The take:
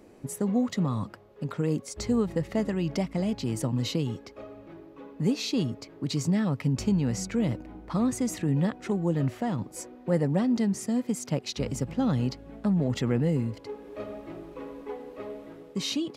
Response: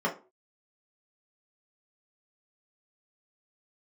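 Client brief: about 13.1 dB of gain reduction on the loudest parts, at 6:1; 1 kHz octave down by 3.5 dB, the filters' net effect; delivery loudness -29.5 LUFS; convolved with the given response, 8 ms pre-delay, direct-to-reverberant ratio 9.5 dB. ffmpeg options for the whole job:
-filter_complex "[0:a]equalizer=f=1000:t=o:g=-5,acompressor=threshold=0.0158:ratio=6,asplit=2[s0][s1];[1:a]atrim=start_sample=2205,adelay=8[s2];[s1][s2]afir=irnorm=-1:irlink=0,volume=0.1[s3];[s0][s3]amix=inputs=2:normalize=0,volume=3.16"

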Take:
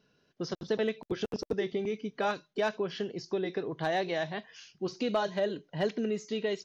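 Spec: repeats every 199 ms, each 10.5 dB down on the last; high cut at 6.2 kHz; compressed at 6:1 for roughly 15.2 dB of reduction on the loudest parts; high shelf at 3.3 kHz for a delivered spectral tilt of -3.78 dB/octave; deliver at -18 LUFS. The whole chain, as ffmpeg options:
-af "lowpass=6200,highshelf=f=3300:g=4.5,acompressor=threshold=0.00794:ratio=6,aecho=1:1:199|398|597:0.299|0.0896|0.0269,volume=23.7"

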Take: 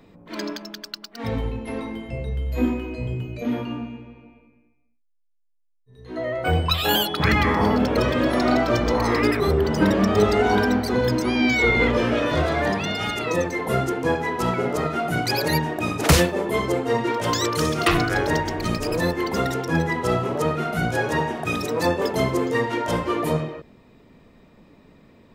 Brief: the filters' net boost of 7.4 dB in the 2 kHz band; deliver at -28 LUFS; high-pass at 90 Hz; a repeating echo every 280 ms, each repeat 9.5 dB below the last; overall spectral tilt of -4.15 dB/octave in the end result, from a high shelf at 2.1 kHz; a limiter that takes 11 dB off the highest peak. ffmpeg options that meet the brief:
-af "highpass=90,equalizer=f=2000:t=o:g=6,highshelf=f=2100:g=5,alimiter=limit=0.316:level=0:latency=1,aecho=1:1:280|560|840|1120:0.335|0.111|0.0365|0.012,volume=0.422"

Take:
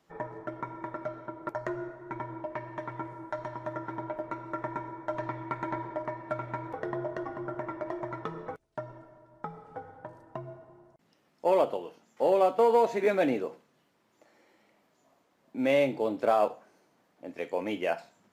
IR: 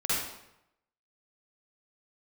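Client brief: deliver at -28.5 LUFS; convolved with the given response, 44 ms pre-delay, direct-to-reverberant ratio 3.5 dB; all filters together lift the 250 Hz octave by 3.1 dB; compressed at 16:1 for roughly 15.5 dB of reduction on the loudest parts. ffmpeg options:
-filter_complex "[0:a]equalizer=f=250:t=o:g=4,acompressor=threshold=0.02:ratio=16,asplit=2[s0][s1];[1:a]atrim=start_sample=2205,adelay=44[s2];[s1][s2]afir=irnorm=-1:irlink=0,volume=0.224[s3];[s0][s3]amix=inputs=2:normalize=0,volume=3.35"

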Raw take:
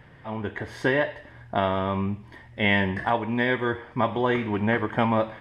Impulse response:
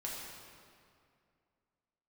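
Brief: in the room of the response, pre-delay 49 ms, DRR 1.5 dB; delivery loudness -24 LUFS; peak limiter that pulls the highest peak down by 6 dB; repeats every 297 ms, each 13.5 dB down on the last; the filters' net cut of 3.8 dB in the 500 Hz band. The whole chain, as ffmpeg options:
-filter_complex "[0:a]equalizer=f=500:t=o:g=-5,alimiter=limit=0.15:level=0:latency=1,aecho=1:1:297|594:0.211|0.0444,asplit=2[s0][s1];[1:a]atrim=start_sample=2205,adelay=49[s2];[s1][s2]afir=irnorm=-1:irlink=0,volume=0.75[s3];[s0][s3]amix=inputs=2:normalize=0,volume=1.33"

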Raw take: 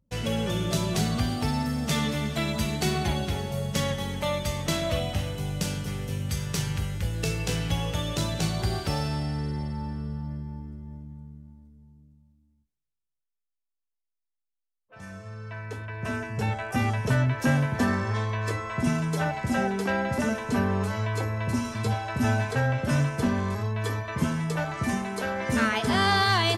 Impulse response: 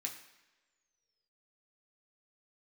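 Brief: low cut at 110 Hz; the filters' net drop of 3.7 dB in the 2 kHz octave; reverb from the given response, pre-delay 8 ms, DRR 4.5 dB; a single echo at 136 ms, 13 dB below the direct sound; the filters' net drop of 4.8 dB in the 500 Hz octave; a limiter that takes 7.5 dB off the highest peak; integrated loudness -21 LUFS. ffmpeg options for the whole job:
-filter_complex "[0:a]highpass=110,equalizer=f=500:t=o:g=-6,equalizer=f=2000:t=o:g=-4.5,alimiter=limit=0.0841:level=0:latency=1,aecho=1:1:136:0.224,asplit=2[s0][s1];[1:a]atrim=start_sample=2205,adelay=8[s2];[s1][s2]afir=irnorm=-1:irlink=0,volume=0.668[s3];[s0][s3]amix=inputs=2:normalize=0,volume=2.99"

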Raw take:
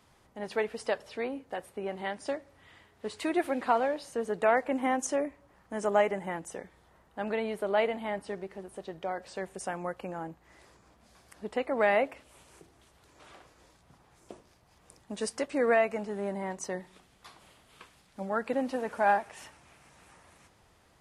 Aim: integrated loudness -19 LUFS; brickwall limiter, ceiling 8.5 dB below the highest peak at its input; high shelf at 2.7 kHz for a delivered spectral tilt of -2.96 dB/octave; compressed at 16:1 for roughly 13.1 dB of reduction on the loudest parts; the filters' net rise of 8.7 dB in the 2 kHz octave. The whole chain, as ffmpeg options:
-af "equalizer=f=2000:t=o:g=7.5,highshelf=f=2700:g=7.5,acompressor=threshold=0.0355:ratio=16,volume=8.41,alimiter=limit=0.501:level=0:latency=1"

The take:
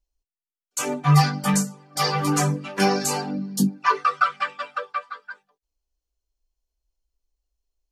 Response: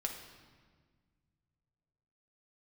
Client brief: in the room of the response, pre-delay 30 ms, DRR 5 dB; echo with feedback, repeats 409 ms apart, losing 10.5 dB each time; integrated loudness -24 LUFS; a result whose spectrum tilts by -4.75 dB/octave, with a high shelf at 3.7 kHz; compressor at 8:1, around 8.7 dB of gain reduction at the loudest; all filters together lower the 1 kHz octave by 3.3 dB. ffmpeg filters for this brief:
-filter_complex "[0:a]equalizer=f=1000:t=o:g=-3.5,highshelf=f=3700:g=-8.5,acompressor=threshold=0.0891:ratio=8,aecho=1:1:409|818|1227:0.299|0.0896|0.0269,asplit=2[s0][s1];[1:a]atrim=start_sample=2205,adelay=30[s2];[s1][s2]afir=irnorm=-1:irlink=0,volume=0.501[s3];[s0][s3]amix=inputs=2:normalize=0,volume=1.5"

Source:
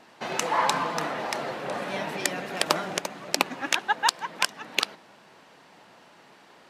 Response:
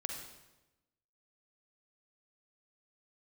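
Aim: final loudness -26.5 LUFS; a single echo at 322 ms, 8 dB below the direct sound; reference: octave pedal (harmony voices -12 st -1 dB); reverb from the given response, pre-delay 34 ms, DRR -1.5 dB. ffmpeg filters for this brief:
-filter_complex "[0:a]aecho=1:1:322:0.398,asplit=2[s0][s1];[1:a]atrim=start_sample=2205,adelay=34[s2];[s1][s2]afir=irnorm=-1:irlink=0,volume=1.12[s3];[s0][s3]amix=inputs=2:normalize=0,asplit=2[s4][s5];[s5]asetrate=22050,aresample=44100,atempo=2,volume=0.891[s6];[s4][s6]amix=inputs=2:normalize=0,volume=0.562"

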